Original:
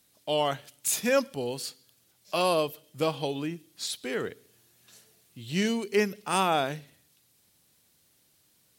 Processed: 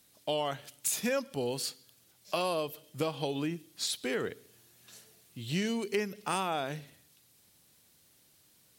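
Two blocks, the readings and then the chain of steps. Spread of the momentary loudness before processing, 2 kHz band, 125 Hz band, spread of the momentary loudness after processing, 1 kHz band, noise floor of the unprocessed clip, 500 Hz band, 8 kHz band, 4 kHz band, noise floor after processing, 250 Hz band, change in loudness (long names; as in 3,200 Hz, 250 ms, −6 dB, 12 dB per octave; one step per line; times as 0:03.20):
11 LU, −5.0 dB, −2.5 dB, 13 LU, −6.0 dB, −67 dBFS, −5.5 dB, −3.0 dB, −3.5 dB, −65 dBFS, −4.0 dB, −5.0 dB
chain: downward compressor 5 to 1, threshold −30 dBFS, peak gain reduction 10.5 dB
level +1.5 dB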